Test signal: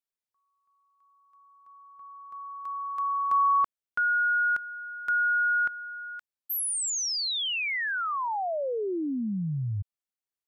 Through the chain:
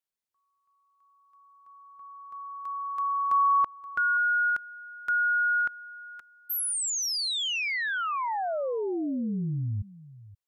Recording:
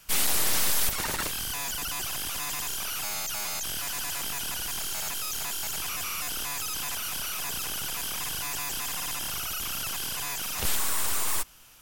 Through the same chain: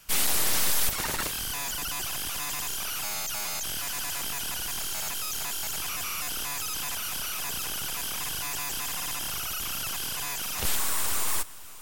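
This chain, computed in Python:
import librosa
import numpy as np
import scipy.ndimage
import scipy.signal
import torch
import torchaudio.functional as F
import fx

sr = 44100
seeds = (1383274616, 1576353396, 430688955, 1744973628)

y = x + 10.0 ** (-18.5 / 20.0) * np.pad(x, (int(526 * sr / 1000.0), 0))[:len(x)]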